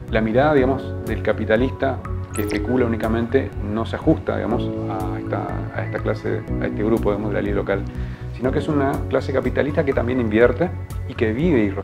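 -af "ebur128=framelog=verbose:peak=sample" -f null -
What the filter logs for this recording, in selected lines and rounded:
Integrated loudness:
  I:         -21.3 LUFS
  Threshold: -31.3 LUFS
Loudness range:
  LRA:         3.0 LU
  Threshold: -41.9 LUFS
  LRA low:   -23.4 LUFS
  LRA high:  -20.4 LUFS
Sample peak:
  Peak:       -1.3 dBFS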